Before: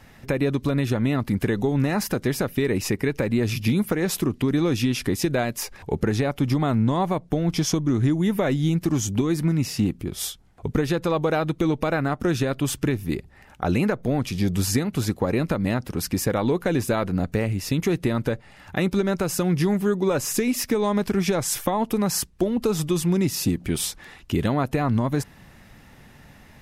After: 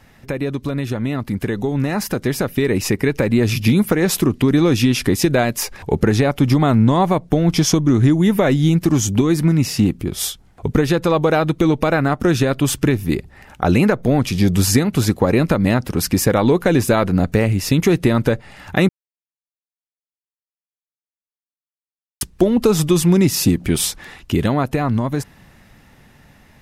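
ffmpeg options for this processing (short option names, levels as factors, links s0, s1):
-filter_complex "[0:a]asplit=3[s0][s1][s2];[s0]atrim=end=18.89,asetpts=PTS-STARTPTS,afade=t=out:st=18.886:d=0.004:c=hsin[s3];[s1]atrim=start=18.89:end=22.21,asetpts=PTS-STARTPTS,volume=0[s4];[s2]atrim=start=22.21,asetpts=PTS-STARTPTS,afade=t=in:d=0.004:c=hsin[s5];[s3][s4][s5]concat=n=3:v=0:a=1,dynaudnorm=f=230:g=21:m=3.16"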